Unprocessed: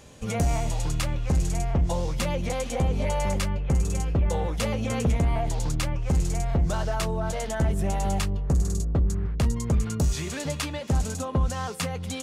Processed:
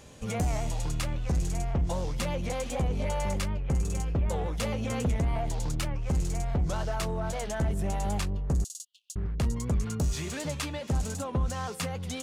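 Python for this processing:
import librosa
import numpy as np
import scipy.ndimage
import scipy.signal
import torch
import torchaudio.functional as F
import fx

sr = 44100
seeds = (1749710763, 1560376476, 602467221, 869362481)

p1 = fx.steep_highpass(x, sr, hz=2800.0, slope=96, at=(8.64, 9.16))
p2 = 10.0 ** (-33.0 / 20.0) * np.tanh(p1 / 10.0 ** (-33.0 / 20.0))
p3 = p1 + (p2 * 10.0 ** (-4.0 / 20.0))
p4 = fx.record_warp(p3, sr, rpm=78.0, depth_cents=100.0)
y = p4 * 10.0 ** (-5.5 / 20.0)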